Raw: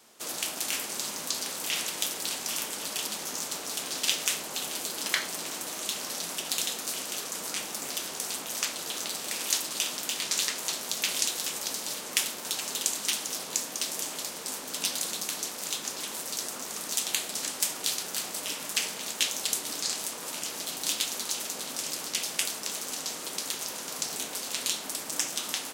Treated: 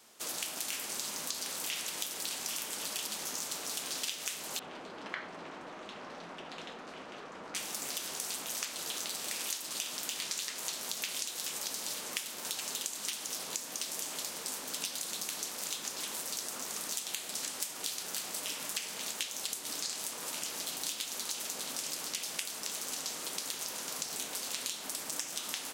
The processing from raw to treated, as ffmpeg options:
-filter_complex "[0:a]asettb=1/sr,asplit=3[a][b][c];[a]atrim=end=4.594[d];[b]atrim=start=4.59:end=7.55,asetpts=PTS-STARTPTS,afade=t=in:d=0.004:c=qsin,afade=t=out:st=2.956:d=0.004:c=qsin,lowpass=1.6k[e];[c]atrim=start=7.546[f];[d][e]acrossfade=d=0.004:c1=hsin:c2=qsin[g];[g][f]acrossfade=d=0.004:c1=qsin:c2=hsin,acompressor=threshold=-31dB:ratio=10,equalizer=f=280:w=0.34:g=-2.5,volume=-1.5dB"

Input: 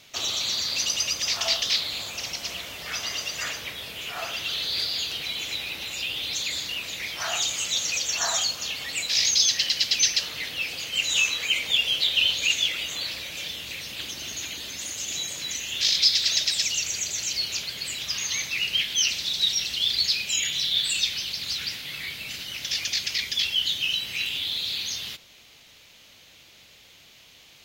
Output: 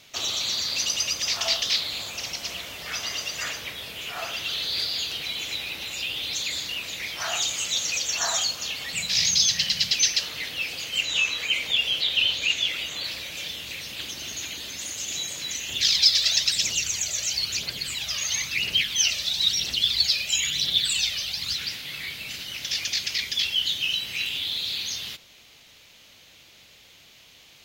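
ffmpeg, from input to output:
-filter_complex "[0:a]asettb=1/sr,asplit=3[a][b][c];[a]atrim=end=8.934[d];[b]atrim=start=8.93:end=9.92,asetpts=PTS-STARTPTS,afade=t=in:d=0.004:c=qsin,afade=t=out:st=0.986:d=0.004:c=qsin,lowshelf=f=230:t=q:w=3:g=6.5[e];[c]atrim=start=9.916[f];[d][e]acrossfade=d=0.004:c1=hsin:c2=qsin[g];[g][f]acrossfade=d=0.004:c1=qsin:c2=hsin,asettb=1/sr,asplit=3[h][i][j];[h]atrim=end=11.014[k];[i]atrim=start=11.01:end=13.04,asetpts=PTS-STARTPTS,afade=t=in:d=0.004:c=qsin,afade=t=out:st=2.026:d=0.004:c=qsin,acrossover=split=4900[l][m];[m]acompressor=threshold=-40dB:ratio=4:attack=1:release=60[n];[l][n]amix=inputs=2:normalize=0[o];[j]atrim=start=13.036[p];[k][o]acrossfade=d=0.004:c1=hsin:c2=qsin[q];[q][p]acrossfade=d=0.004:c1=qsin:c2=hsin,asettb=1/sr,asplit=3[r][s][t];[r]atrim=end=15.694[u];[s]atrim=start=15.69:end=21.56,asetpts=PTS-STARTPTS,afade=t=in:d=0.004:c=qsin,afade=t=out:st=5.866:d=0.004:c=qsin,aphaser=in_gain=1:out_gain=1:delay=1.8:decay=0.51:speed=1:type=triangular[v];[t]atrim=start=21.556[w];[u][v]acrossfade=d=0.004:c1=hsin:c2=qsin[x];[x][w]acrossfade=d=0.004:c1=qsin:c2=hsin"

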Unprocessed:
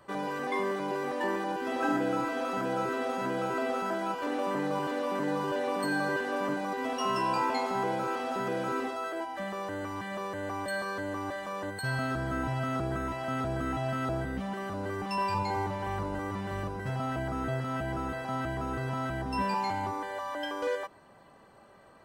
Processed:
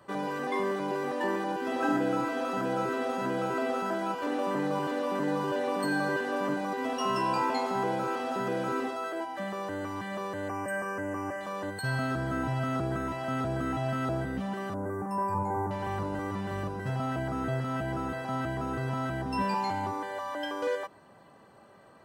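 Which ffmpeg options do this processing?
-filter_complex "[0:a]asettb=1/sr,asplit=3[a][b][c];[a]atrim=end=10.484[d];[b]atrim=start=10.48:end=11.41,asetpts=PTS-STARTPTS,afade=t=in:d=0.004:c=qsin,afade=t=out:st=0.926:d=0.004:c=qsin,asuperstop=centerf=3800:order=12:qfactor=1.9[e];[c]atrim=start=11.406[f];[d][e]acrossfade=d=0.004:c1=hsin:c2=qsin[g];[g][f]acrossfade=d=0.004:c1=qsin:c2=hsin,asettb=1/sr,asplit=3[h][i][j];[h]atrim=end=14.744[k];[i]atrim=start=14.74:end=15.71,asetpts=PTS-STARTPTS,afade=t=in:d=0.004:c=qsin,afade=t=out:st=0.966:d=0.004:c=qsin,asuperstop=centerf=3600:order=4:qfactor=0.52[l];[j]atrim=start=15.706[m];[k][l]acrossfade=d=0.004:c1=hsin:c2=qsin[n];[n][m]acrossfade=d=0.004:c1=qsin:c2=hsin,highpass=87,lowshelf=f=340:g=3,bandreject=f=2.2k:w=16"

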